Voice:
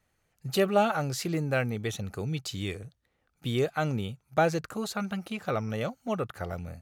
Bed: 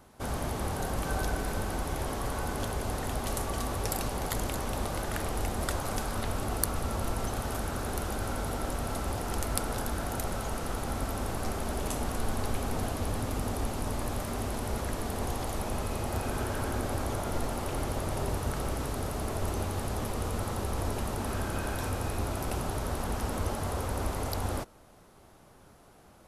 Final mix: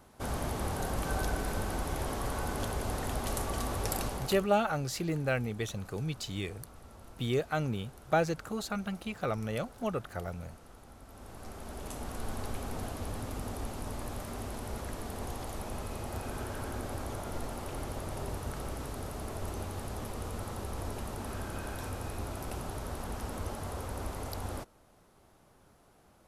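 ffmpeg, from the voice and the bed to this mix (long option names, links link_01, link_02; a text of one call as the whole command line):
ffmpeg -i stem1.wav -i stem2.wav -filter_complex "[0:a]adelay=3750,volume=-3dB[link_01];[1:a]volume=12.5dB,afade=type=out:start_time=4.03:duration=0.45:silence=0.11885,afade=type=in:start_time=11.05:duration=1.26:silence=0.199526[link_02];[link_01][link_02]amix=inputs=2:normalize=0" out.wav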